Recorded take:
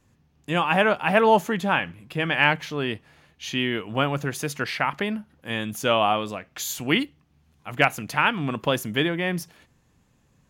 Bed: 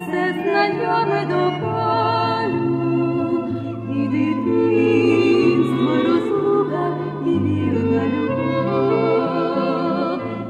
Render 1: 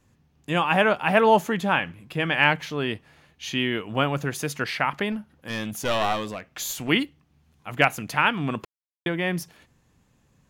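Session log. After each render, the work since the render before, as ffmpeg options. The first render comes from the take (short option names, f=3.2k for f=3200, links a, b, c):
-filter_complex "[0:a]asettb=1/sr,asplit=3[a][b][c];[a]atrim=end=5.124[d];[b]atrim=start=5.12:end=6.89,asetpts=PTS-STARTPTS,afade=t=in:d=0.004:c=qsin,afade=t=out:st=1.766:d=0.004:c=qsin,aeval=exprs='clip(val(0),-1,0.0447)':c=same[e];[c]atrim=start=6.886[f];[d][e]acrossfade=d=0.004:c1=hsin:c2=qsin[g];[g][f]acrossfade=d=0.004:c1=qsin:c2=hsin,asplit=3[h][i][j];[h]atrim=end=8.65,asetpts=PTS-STARTPTS,afade=t=out:st=8.646:d=0.004:c=hsin[k];[i]atrim=start=8.65:end=9.06,asetpts=PTS-STARTPTS,volume=0[l];[j]atrim=start=9.06,asetpts=PTS-STARTPTS,afade=t=in:d=0.004:c=hsin[m];[k][l][m]concat=n=3:v=0:a=1"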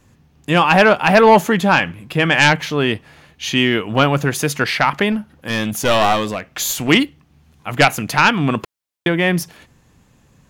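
-af "aeval=exprs='0.668*sin(PI/2*2*val(0)/0.668)':c=same"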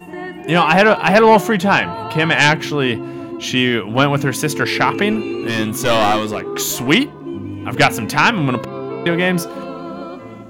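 -filter_complex "[1:a]volume=-8.5dB[a];[0:a][a]amix=inputs=2:normalize=0"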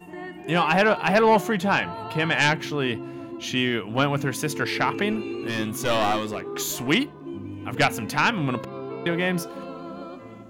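-af "volume=-8dB"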